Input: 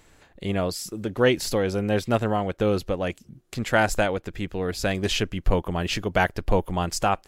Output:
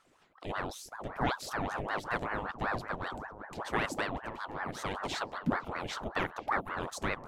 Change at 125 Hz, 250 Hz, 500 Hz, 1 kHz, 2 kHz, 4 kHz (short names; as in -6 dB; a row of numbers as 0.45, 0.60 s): -14.5, -12.5, -14.5, -6.5, -7.0, -12.0 dB